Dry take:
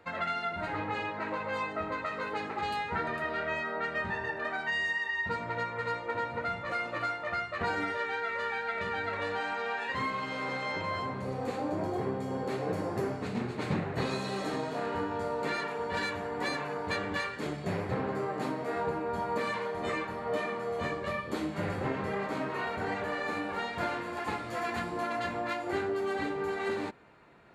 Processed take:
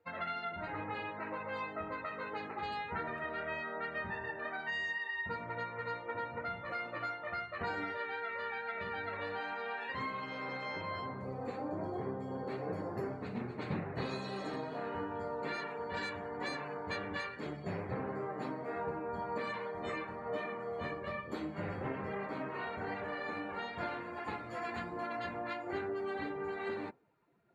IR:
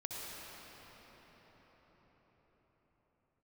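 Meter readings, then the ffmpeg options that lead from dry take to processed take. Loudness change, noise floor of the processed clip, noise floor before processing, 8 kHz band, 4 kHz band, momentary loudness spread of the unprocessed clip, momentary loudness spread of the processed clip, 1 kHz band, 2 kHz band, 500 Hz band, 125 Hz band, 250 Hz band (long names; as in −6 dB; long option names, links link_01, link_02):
−6.0 dB, −46 dBFS, −40 dBFS, below −10 dB, −7.0 dB, 2 LU, 3 LU, −6.0 dB, −6.0 dB, −6.0 dB, −6.0 dB, −6.0 dB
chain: -af "afftdn=noise_reduction=15:noise_floor=-49,volume=-6dB"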